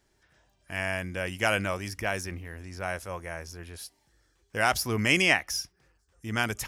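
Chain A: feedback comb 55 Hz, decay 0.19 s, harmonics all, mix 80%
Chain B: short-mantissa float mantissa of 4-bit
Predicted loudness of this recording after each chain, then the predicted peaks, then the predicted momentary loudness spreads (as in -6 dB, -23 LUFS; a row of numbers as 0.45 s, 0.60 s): -32.5 LUFS, -28.5 LUFS; -12.0 dBFS, -8.5 dBFS; 19 LU, 19 LU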